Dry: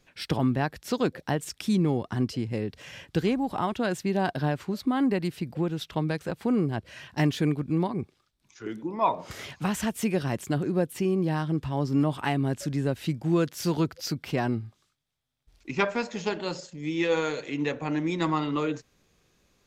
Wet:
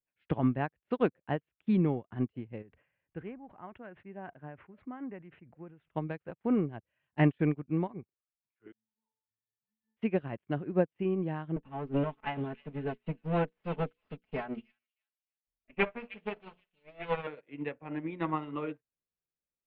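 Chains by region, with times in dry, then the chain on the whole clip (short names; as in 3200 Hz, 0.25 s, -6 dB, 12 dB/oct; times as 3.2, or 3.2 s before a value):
2.62–5.91 ladder low-pass 2800 Hz, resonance 25% + sustainer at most 41 dB/s
8.72–9.97 zero-crossing step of -35.5 dBFS + passive tone stack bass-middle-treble 5-5-5 + octave resonator A, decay 0.42 s
11.56–17.27 minimum comb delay 4.6 ms + notches 60/120/180/240/300/360/420/480 Hz + delay with a stepping band-pass 0.309 s, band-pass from 3300 Hz, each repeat 0.7 oct, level 0 dB
whole clip: steep low-pass 2900 Hz 36 dB/oct; bell 600 Hz +2 dB; upward expander 2.5:1, over -44 dBFS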